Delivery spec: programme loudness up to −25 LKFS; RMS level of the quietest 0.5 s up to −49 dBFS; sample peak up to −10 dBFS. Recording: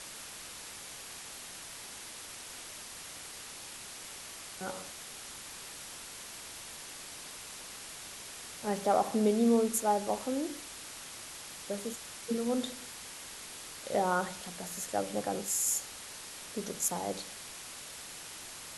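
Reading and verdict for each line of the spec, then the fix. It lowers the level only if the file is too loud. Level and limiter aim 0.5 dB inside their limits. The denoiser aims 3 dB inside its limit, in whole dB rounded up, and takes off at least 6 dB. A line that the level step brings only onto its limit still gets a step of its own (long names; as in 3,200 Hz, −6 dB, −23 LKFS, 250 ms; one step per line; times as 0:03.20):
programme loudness −36.0 LKFS: in spec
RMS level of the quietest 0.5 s −46 dBFS: out of spec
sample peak −15.5 dBFS: in spec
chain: broadband denoise 6 dB, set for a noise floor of −46 dBFS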